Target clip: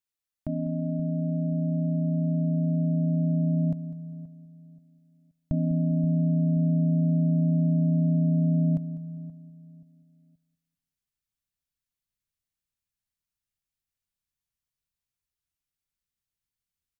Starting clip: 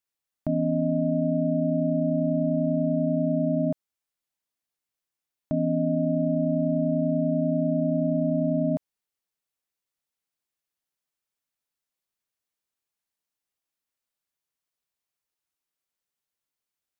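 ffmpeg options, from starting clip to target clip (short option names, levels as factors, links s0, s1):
-filter_complex "[0:a]equalizer=f=780:w=0.75:g=-5,asplit=2[s0][s1];[s1]adelay=528,lowpass=f=810:p=1,volume=0.158,asplit=2[s2][s3];[s3]adelay=528,lowpass=f=810:p=1,volume=0.31,asplit=2[s4][s5];[s5]adelay=528,lowpass=f=810:p=1,volume=0.31[s6];[s2][s4][s6]amix=inputs=3:normalize=0[s7];[s0][s7]amix=inputs=2:normalize=0,asubboost=boost=5.5:cutoff=150,asplit=2[s8][s9];[s9]aecho=0:1:200|400|600:0.141|0.0438|0.0136[s10];[s8][s10]amix=inputs=2:normalize=0,volume=0.708"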